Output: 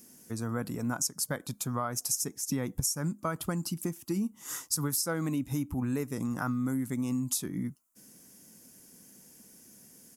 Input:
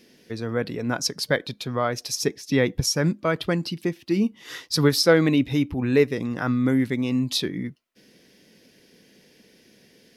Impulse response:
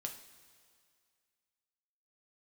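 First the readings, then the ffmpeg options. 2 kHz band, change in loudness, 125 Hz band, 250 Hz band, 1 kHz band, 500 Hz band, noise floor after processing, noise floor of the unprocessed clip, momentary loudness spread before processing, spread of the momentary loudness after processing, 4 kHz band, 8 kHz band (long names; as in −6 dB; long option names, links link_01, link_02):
−13.5 dB, −9.0 dB, −7.5 dB, −9.0 dB, −7.0 dB, −15.5 dB, −60 dBFS, −57 dBFS, 10 LU, 5 LU, −13.0 dB, +0.5 dB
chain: -af "firequalizer=gain_entry='entry(250,0);entry(430,-9);entry(830,1);entry(1300,2);entry(1800,-9);entry(4000,-11);entry(7100,15)':delay=0.05:min_phase=1,acompressor=threshold=-26dB:ratio=6,volume=-2dB"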